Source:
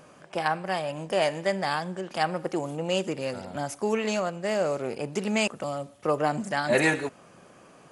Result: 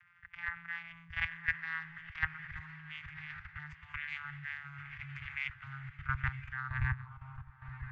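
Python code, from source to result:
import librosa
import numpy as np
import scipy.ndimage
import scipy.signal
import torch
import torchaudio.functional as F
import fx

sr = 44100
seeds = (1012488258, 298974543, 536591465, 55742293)

y = fx.vocoder_glide(x, sr, note=53, semitones=-6)
y = fx.echo_diffused(y, sr, ms=1052, feedback_pct=61, wet_db=-12.0)
y = fx.filter_sweep_lowpass(y, sr, from_hz=2000.0, to_hz=980.0, start_s=6.34, end_s=6.85, q=2.7)
y = fx.level_steps(y, sr, step_db=12)
y = scipy.signal.sosfilt(scipy.signal.cheby2(4, 60, [200.0, 610.0], 'bandstop', fs=sr, output='sos'), y)
y = fx.low_shelf(y, sr, hz=360.0, db=12.0)
y = F.gain(torch.from_numpy(y), 5.5).numpy()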